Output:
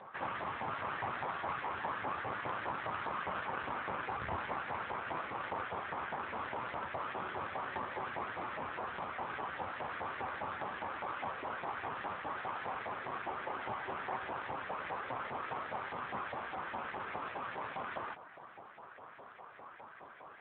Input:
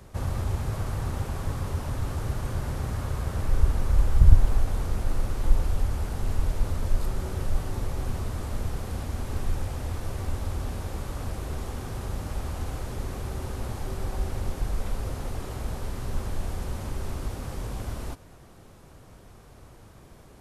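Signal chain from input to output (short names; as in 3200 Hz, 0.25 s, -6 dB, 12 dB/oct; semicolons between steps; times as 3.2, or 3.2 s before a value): LFO band-pass saw up 4.9 Hz 780–2100 Hz; one-sided clip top -51.5 dBFS, bottom -34.5 dBFS; gain +13 dB; AMR-NB 7.4 kbps 8000 Hz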